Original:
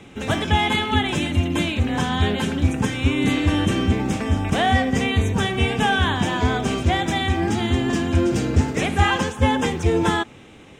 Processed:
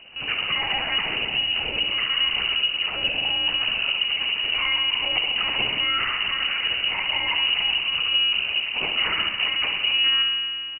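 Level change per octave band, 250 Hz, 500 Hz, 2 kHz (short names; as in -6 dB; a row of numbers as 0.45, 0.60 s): -23.0, -15.0, +1.0 dB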